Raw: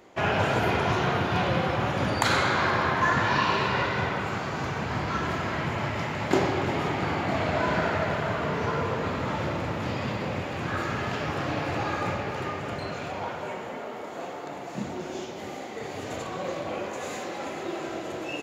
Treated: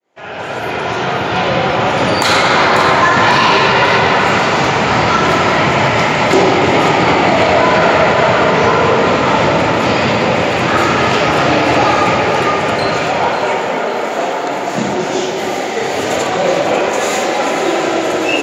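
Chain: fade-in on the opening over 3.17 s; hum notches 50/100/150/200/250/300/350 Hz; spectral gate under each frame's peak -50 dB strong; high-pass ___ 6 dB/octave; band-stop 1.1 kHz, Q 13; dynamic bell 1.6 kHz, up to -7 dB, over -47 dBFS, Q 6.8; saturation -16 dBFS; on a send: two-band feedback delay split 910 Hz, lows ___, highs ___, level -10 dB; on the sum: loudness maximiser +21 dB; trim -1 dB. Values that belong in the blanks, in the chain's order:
270 Hz, 103 ms, 544 ms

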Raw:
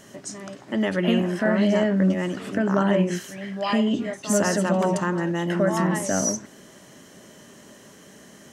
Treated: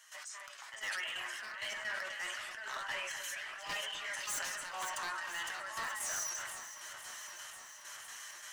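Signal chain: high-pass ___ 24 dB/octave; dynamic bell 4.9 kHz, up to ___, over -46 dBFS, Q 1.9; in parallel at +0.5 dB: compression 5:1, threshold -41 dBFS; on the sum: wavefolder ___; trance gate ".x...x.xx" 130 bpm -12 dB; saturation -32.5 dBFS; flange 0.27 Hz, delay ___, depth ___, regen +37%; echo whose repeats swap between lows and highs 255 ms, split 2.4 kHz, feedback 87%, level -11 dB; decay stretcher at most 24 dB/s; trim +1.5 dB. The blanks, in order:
1.1 kHz, -4 dB, -23.5 dBFS, 6.3 ms, 2.7 ms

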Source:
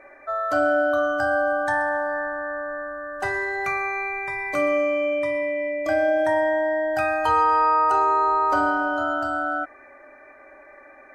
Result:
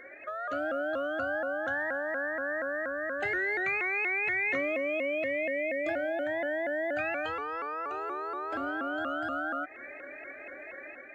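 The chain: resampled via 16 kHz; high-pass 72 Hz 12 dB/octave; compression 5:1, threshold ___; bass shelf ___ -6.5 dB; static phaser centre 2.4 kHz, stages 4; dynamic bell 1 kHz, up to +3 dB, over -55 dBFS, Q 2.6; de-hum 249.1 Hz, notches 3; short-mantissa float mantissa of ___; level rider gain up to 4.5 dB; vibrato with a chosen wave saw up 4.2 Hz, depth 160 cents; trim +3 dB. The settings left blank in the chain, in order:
-33 dBFS, 250 Hz, 6-bit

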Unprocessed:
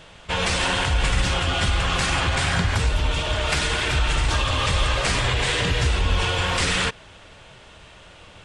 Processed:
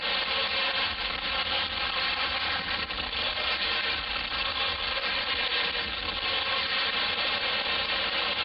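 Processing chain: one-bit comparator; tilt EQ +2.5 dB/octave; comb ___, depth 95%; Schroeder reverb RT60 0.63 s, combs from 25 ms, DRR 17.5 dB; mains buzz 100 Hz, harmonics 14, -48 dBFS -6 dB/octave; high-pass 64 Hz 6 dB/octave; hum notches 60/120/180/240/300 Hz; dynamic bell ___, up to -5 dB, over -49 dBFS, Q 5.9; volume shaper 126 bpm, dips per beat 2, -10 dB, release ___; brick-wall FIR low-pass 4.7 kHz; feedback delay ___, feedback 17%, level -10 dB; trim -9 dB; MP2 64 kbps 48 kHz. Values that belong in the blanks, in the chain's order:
3.8 ms, 280 Hz, 77 ms, 204 ms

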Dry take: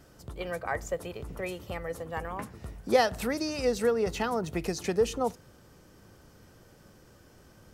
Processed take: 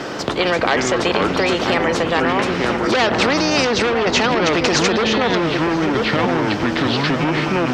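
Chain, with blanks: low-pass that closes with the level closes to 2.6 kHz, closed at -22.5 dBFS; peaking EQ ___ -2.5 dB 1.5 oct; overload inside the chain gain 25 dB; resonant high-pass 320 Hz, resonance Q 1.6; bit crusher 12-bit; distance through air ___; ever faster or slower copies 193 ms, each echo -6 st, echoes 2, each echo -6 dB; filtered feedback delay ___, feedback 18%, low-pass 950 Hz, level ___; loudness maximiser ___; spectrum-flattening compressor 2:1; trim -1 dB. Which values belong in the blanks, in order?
1.2 kHz, 180 m, 983 ms, -11 dB, +27.5 dB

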